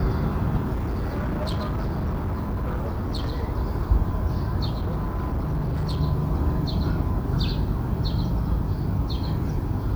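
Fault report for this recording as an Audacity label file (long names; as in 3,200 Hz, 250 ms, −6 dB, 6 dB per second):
0.740000	3.440000	clipping −23 dBFS
4.670000	6.010000	clipping −22 dBFS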